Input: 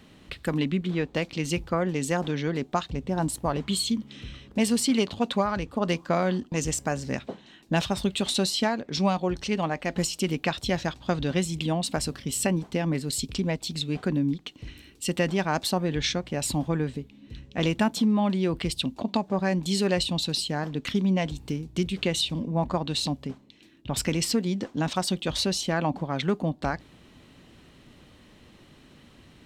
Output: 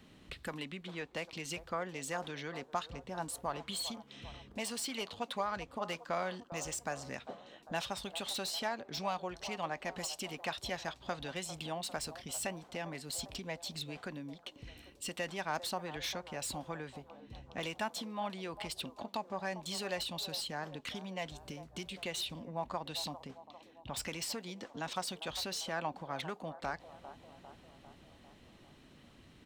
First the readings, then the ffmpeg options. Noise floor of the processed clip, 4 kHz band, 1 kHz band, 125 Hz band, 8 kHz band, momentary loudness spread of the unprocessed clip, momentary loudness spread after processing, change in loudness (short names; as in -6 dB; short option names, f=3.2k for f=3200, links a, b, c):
-60 dBFS, -10.0 dB, -8.0 dB, -19.0 dB, -9.5 dB, 7 LU, 15 LU, -12.5 dB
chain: -filter_complex "[0:a]acrossover=split=600|1100[a][b][c];[a]acompressor=threshold=-39dB:ratio=6[d];[b]aecho=1:1:399|798|1197|1596|1995|2394|2793:0.355|0.213|0.128|0.0766|0.046|0.0276|0.0166[e];[c]asoftclip=type=tanh:threshold=-27.5dB[f];[d][e][f]amix=inputs=3:normalize=0,volume=-6.5dB"